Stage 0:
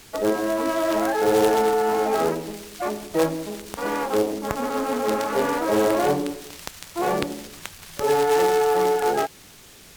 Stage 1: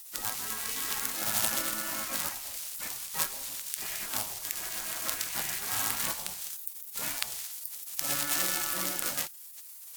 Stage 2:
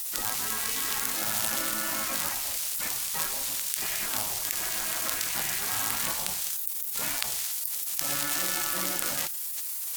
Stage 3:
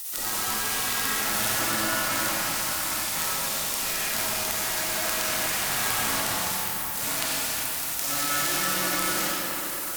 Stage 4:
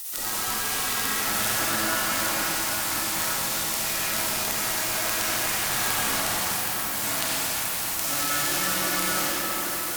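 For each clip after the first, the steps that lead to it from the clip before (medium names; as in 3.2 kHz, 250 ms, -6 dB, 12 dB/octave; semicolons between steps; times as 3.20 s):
spectral gate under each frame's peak -15 dB weak; pre-emphasis filter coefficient 0.8; trim +5.5 dB
level flattener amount 70%; trim -1.5 dB
algorithmic reverb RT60 4.9 s, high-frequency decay 0.5×, pre-delay 10 ms, DRR -8.5 dB; trim -2.5 dB
echo whose repeats swap between lows and highs 266 ms, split 1.5 kHz, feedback 88%, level -9 dB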